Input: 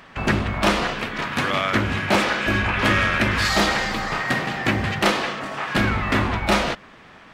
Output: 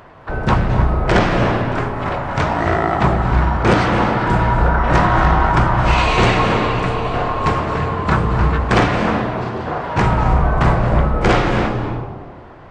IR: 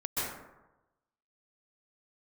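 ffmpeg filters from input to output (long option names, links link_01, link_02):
-filter_complex "[0:a]asplit=2[link_01][link_02];[1:a]atrim=start_sample=2205,lowshelf=frequency=260:gain=7.5[link_03];[link_02][link_03]afir=irnorm=-1:irlink=0,volume=-10.5dB[link_04];[link_01][link_04]amix=inputs=2:normalize=0,asetrate=25442,aresample=44100,volume=2dB"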